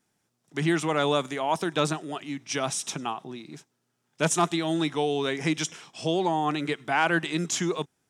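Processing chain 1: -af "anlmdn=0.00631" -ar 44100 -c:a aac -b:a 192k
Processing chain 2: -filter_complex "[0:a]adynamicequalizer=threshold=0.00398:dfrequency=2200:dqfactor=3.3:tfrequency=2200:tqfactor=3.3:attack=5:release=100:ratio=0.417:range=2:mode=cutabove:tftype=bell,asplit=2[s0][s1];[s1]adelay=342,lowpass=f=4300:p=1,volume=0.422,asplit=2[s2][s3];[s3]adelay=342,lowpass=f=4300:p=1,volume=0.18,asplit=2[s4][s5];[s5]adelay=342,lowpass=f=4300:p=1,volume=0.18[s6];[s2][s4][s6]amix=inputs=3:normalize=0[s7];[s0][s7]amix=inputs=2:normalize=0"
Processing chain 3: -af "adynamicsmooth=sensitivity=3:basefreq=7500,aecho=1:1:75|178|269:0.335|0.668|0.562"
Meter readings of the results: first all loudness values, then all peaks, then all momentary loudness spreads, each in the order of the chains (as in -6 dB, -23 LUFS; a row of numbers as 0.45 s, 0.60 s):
-27.5 LUFS, -27.0 LUFS, -25.0 LUFS; -10.5 dBFS, -10.5 dBFS, -9.0 dBFS; 10 LU, 8 LU, 8 LU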